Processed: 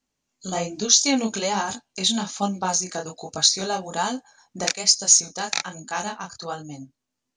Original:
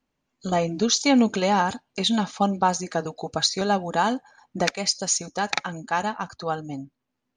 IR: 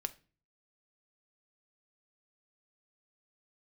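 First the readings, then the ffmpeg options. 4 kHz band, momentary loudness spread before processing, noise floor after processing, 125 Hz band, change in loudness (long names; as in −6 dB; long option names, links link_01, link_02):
+4.0 dB, 11 LU, −82 dBFS, −4.5 dB, +2.5 dB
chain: -af "equalizer=frequency=6900:width_type=o:width=1.6:gain=14,flanger=delay=19.5:depth=7.8:speed=1.2,volume=-1.5dB"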